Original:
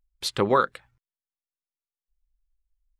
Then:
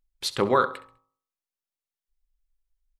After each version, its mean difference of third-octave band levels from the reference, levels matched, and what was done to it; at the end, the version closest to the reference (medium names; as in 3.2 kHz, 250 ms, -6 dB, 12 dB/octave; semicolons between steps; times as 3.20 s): 2.0 dB: peaking EQ 62 Hz -6 dB 1.1 oct; de-hum 53.57 Hz, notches 24; on a send: feedback delay 67 ms, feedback 35%, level -17 dB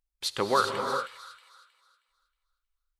8.0 dB: bass shelf 360 Hz -9 dB; on a send: feedback echo behind a high-pass 316 ms, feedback 33%, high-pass 2.7 kHz, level -5.5 dB; on the sum: gated-style reverb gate 430 ms rising, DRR 3.5 dB; trim -2 dB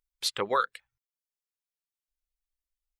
5.0 dB: tilt shelf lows -8 dB, about 760 Hz; reverb removal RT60 0.52 s; peaking EQ 480 Hz +6 dB 0.45 oct; trim -7.5 dB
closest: first